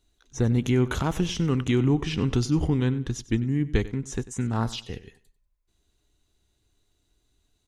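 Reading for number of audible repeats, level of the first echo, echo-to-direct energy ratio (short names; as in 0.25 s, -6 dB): 2, -17.5 dB, -17.0 dB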